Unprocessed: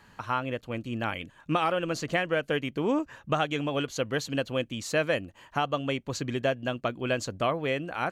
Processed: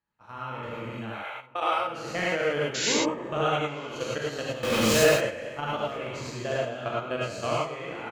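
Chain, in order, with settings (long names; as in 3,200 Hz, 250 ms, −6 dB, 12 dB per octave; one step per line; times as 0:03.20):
peak hold with a decay on every bin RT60 1.67 s
0:01.12–0:01.85: high-pass filter 490 Hz 24 dB per octave
noise gate −32 dBFS, range −22 dB
high-shelf EQ 5,900 Hz −5 dB
output level in coarse steps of 12 dB
0:02.74–0:02.94: sound drawn into the spectrogram noise 1,400–7,600 Hz −26 dBFS
0:04.63–0:05.09: power curve on the samples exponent 0.35
slap from a distant wall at 160 metres, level −19 dB
reverb whose tail is shaped and stops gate 130 ms rising, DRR −5 dB
level −6 dB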